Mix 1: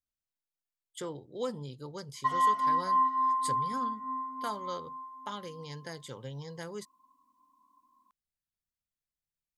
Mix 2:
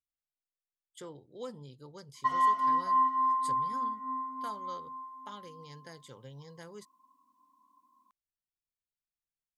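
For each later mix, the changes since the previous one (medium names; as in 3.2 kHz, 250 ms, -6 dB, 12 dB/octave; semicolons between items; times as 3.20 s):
speech -7.0 dB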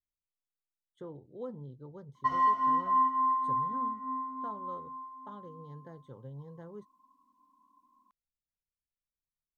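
speech: add boxcar filter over 18 samples; master: add tilt EQ -1.5 dB/octave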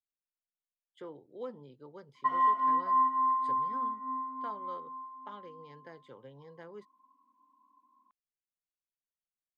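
speech: remove boxcar filter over 18 samples; master: add three-band isolator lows -16 dB, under 230 Hz, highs -23 dB, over 3.3 kHz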